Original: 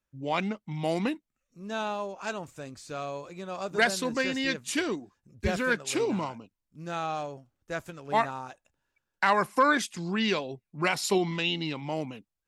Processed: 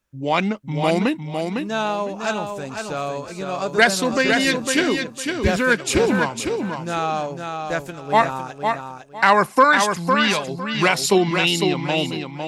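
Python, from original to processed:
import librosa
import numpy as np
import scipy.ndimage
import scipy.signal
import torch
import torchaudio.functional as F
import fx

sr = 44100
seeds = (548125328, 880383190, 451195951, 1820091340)

y = fx.peak_eq(x, sr, hz=340.0, db=-10.0, octaves=1.0, at=(9.64, 10.48))
y = fx.echo_feedback(y, sr, ms=505, feedback_pct=23, wet_db=-5.5)
y = F.gain(torch.from_numpy(y), 9.0).numpy()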